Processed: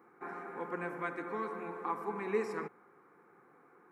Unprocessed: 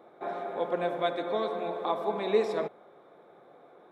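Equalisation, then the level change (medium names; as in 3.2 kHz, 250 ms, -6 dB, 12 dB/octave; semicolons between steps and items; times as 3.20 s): high-pass 41 Hz; bass shelf 160 Hz -6.5 dB; static phaser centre 1.5 kHz, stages 4; 0.0 dB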